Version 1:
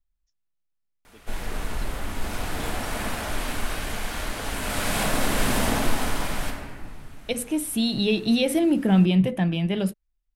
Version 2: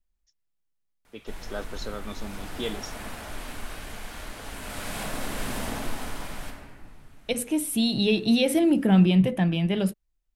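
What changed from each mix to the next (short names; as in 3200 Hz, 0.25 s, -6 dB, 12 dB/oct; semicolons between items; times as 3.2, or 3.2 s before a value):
first voice +10.5 dB; background -8.5 dB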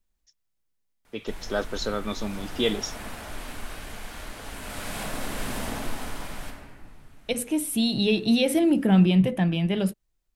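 first voice +7.5 dB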